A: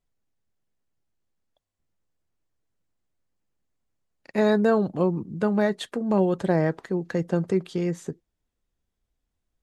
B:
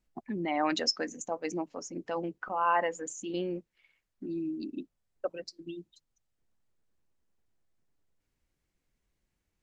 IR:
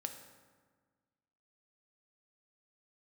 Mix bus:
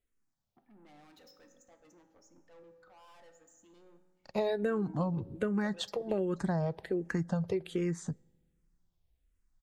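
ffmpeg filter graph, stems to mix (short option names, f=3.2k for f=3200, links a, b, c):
-filter_complex "[0:a]asplit=2[a][b];[b]afreqshift=-1.3[c];[a][c]amix=inputs=2:normalize=1,volume=-0.5dB,asplit=3[d][e][f];[e]volume=-20.5dB[g];[1:a]asoftclip=type=tanh:threshold=-37.5dB,adelay=400,volume=-7.5dB,asplit=2[h][i];[i]volume=-10.5dB[j];[f]apad=whole_len=441911[k];[h][k]sidechaingate=range=-33dB:threshold=-48dB:ratio=16:detection=peak[l];[2:a]atrim=start_sample=2205[m];[g][j]amix=inputs=2:normalize=0[n];[n][m]afir=irnorm=-1:irlink=0[o];[d][l][o]amix=inputs=3:normalize=0,asubboost=boost=2.5:cutoff=120,acompressor=threshold=-28dB:ratio=6"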